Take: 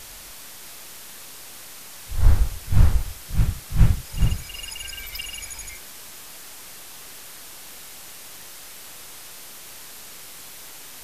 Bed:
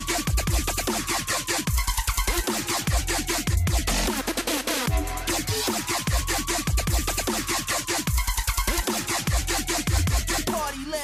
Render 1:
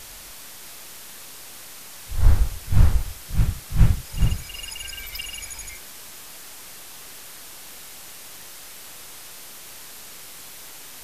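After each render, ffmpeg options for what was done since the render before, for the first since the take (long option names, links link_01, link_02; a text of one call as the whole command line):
ffmpeg -i in.wav -af anull out.wav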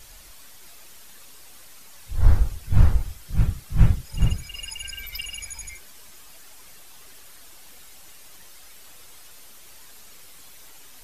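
ffmpeg -i in.wav -af "afftdn=noise_reduction=9:noise_floor=-41" out.wav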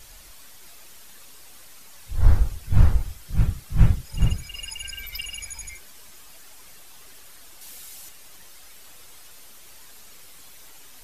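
ffmpeg -i in.wav -filter_complex "[0:a]asettb=1/sr,asplit=3[link_01][link_02][link_03];[link_01]atrim=end=7.614[link_04];[link_02]atrim=start=7.61:end=8.09,asetpts=PTS-STARTPTS,afade=type=in:duration=0.004:curve=qsin,afade=type=out:start_time=0.476:duration=0.004:curve=qsin,highshelf=frequency=3500:gain=8[link_05];[link_03]atrim=start=8.086[link_06];[link_04][link_05]acrossfade=duration=0.004:curve1=hsin:curve2=qsin[link_07];[link_07][link_06]acrossfade=duration=0.004:curve1=qsin:curve2=hsin" out.wav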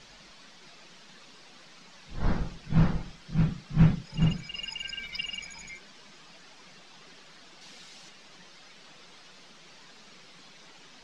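ffmpeg -i in.wav -af "lowpass=frequency=5400:width=0.5412,lowpass=frequency=5400:width=1.3066,lowshelf=frequency=120:width_type=q:width=3:gain=-11.5" out.wav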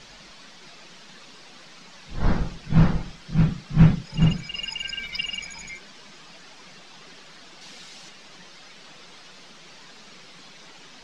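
ffmpeg -i in.wav -af "volume=5.5dB" out.wav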